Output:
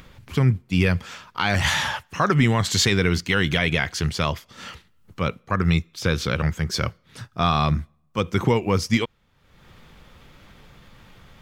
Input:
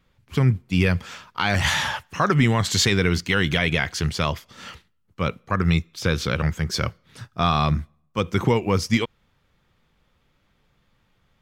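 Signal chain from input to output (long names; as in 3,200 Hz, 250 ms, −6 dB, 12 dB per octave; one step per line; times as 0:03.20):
upward compression, threshold −33 dBFS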